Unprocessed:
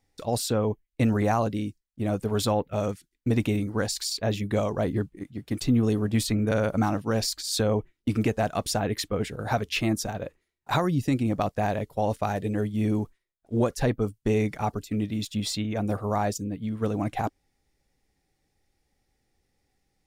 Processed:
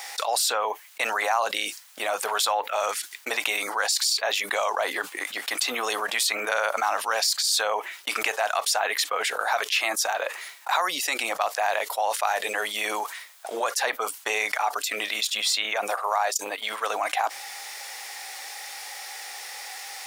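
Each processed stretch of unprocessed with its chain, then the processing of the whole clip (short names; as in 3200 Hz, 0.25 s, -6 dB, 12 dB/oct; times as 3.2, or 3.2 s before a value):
15.9–16.9 tone controls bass -8 dB, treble +1 dB + transient shaper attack +2 dB, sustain -12 dB
whole clip: de-esser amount 40%; HPF 780 Hz 24 dB/oct; fast leveller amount 70%; gain +2.5 dB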